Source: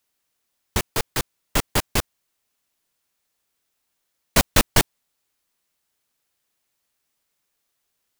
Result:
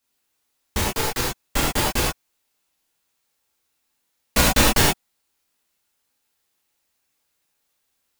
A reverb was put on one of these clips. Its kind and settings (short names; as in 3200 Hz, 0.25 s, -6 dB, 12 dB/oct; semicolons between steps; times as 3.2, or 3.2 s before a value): non-linear reverb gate 0.13 s flat, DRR -5.5 dB; gain -4 dB